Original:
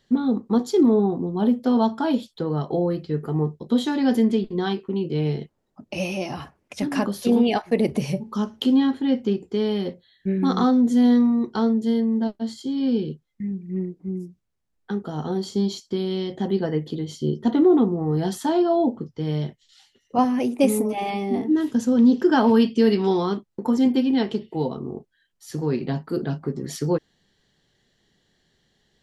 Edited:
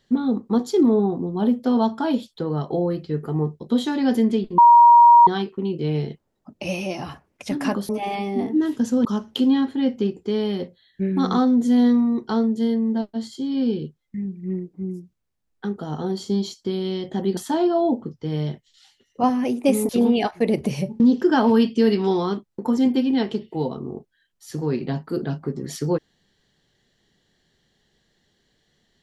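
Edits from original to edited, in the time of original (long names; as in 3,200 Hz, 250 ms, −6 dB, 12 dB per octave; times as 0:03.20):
0:04.58: insert tone 948 Hz −7 dBFS 0.69 s
0:07.20–0:08.31: swap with 0:20.84–0:22.00
0:16.63–0:18.32: remove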